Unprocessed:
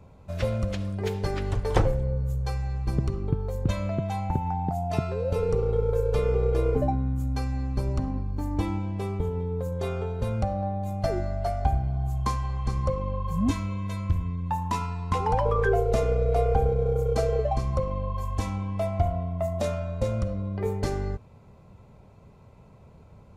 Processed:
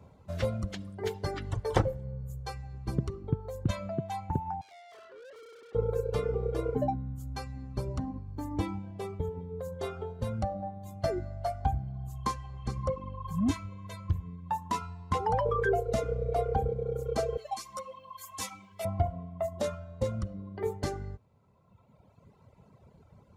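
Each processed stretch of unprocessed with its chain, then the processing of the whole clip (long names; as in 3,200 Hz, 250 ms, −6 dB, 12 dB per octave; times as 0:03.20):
0:04.61–0:05.75: elliptic band-pass filter 410–1,600 Hz + tube saturation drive 45 dB, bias 0.6
0:17.37–0:18.85: high-pass filter 51 Hz + spectral tilt +4.5 dB per octave + string-ensemble chorus
whole clip: reverb reduction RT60 1.9 s; high-pass filter 66 Hz; notch filter 2,500 Hz, Q 12; level −2 dB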